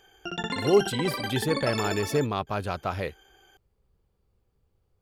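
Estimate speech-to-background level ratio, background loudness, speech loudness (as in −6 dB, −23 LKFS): 4.0 dB, −32.0 LKFS, −28.0 LKFS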